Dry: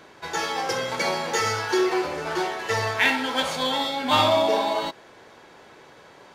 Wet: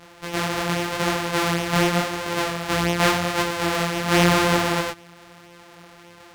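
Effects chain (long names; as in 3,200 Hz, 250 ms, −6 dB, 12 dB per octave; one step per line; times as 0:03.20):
samples sorted by size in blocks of 256 samples
multi-voice chorus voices 2, 0.86 Hz, delay 24 ms, depth 4.7 ms
mid-hump overdrive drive 6 dB, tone 5,200 Hz, clips at −9 dBFS
level +7 dB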